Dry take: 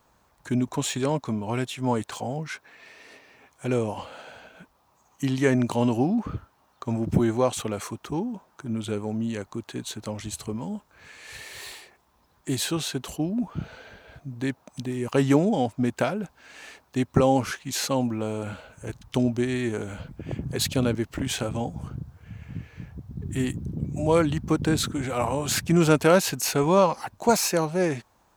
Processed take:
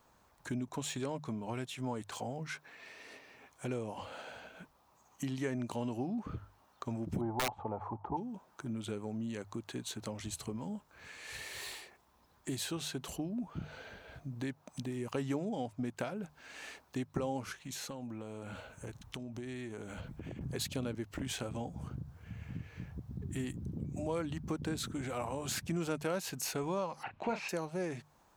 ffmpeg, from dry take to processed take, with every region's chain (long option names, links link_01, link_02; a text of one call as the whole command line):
ffmpeg -i in.wav -filter_complex "[0:a]asettb=1/sr,asplit=3[link_01][link_02][link_03];[link_01]atrim=end=7.214[link_04];[link_02]atrim=start=7.21:end=8.17,asetpts=PTS-STARTPTS,afade=type=in:duration=0.004:curve=qsin,afade=type=out:start_time=0.956:duration=0.004:curve=qsin,lowpass=frequency=860:width_type=q:width=9.7,equalizer=frequency=92:width=2.3:gain=7.5,aeval=exprs='(mod(2.51*val(0)+1,2)-1)/2.51':channel_layout=same[link_05];[link_03]atrim=start=8.166[link_06];[link_04][link_05]acrossfade=duration=0.004:curve1=hsin:curve2=qsin[link_07];[link_07][link_06]acrossfade=duration=0.004:curve1=qsin:curve2=hsin,asettb=1/sr,asplit=3[link_08][link_09][link_10];[link_08]atrim=end=17.524[link_11];[link_09]atrim=start=17.52:end=20.41,asetpts=PTS-STARTPTS,afade=type=in:duration=0.004:curve=qsin,afade=type=out:start_time=2.886:duration=0.004:curve=qsin,bandreject=frequency=4800:width=15,acompressor=threshold=-34dB:ratio=12:attack=3.2:release=140:knee=1:detection=peak[link_12];[link_10]atrim=start=20.406[link_13];[link_11][link_12]acrossfade=duration=0.004:curve1=hsin:curve2=qsin[link_14];[link_14][link_13]acrossfade=duration=0.004:curve1=qsin:curve2=hsin,asettb=1/sr,asplit=3[link_15][link_16][link_17];[link_15]atrim=end=27.034[link_18];[link_16]atrim=start=27.03:end=27.49,asetpts=PTS-STARTPTS,afade=type=in:duration=0.004:curve=qsin,afade=type=out:start_time=0.456:duration=0.004:curve=qsin,lowpass=frequency=2600:width_type=q:width=3,asplit=2[link_19][link_20];[link_20]adelay=35,volume=-10dB[link_21];[link_19][link_21]amix=inputs=2:normalize=0,atrim=end_sample=20286[link_22];[link_17]atrim=start=27.486[link_23];[link_18][link_22]acrossfade=duration=0.004:curve1=hsin:curve2=qsin[link_24];[link_24][link_23]acrossfade=duration=0.004:curve1=qsin:curve2=hsin,bandreject=frequency=50:width_type=h:width=6,bandreject=frequency=100:width_type=h:width=6,bandreject=frequency=150:width_type=h:width=6,acompressor=threshold=-35dB:ratio=2.5,volume=-3.5dB" out.wav